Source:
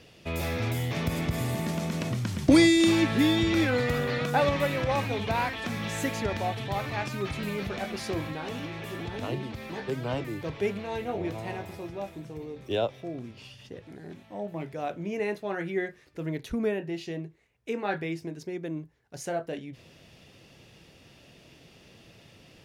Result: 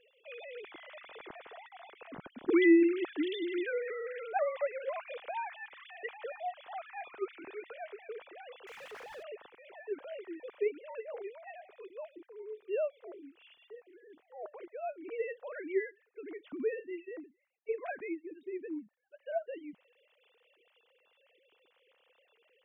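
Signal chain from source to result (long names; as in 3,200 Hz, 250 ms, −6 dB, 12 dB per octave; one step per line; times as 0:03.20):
three sine waves on the formant tracks
0:08.67–0:09.23: power curve on the samples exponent 0.5
level −7.5 dB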